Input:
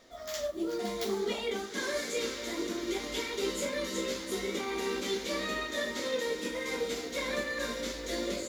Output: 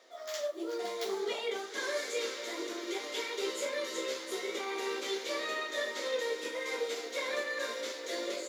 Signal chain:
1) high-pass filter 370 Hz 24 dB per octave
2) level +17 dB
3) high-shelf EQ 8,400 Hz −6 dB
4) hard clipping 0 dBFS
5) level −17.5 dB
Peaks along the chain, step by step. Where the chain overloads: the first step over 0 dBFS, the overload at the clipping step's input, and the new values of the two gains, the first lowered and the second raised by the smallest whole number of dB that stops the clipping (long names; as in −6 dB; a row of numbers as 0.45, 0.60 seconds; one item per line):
−19.0, −2.0, −5.0, −5.0, −22.5 dBFS
no step passes full scale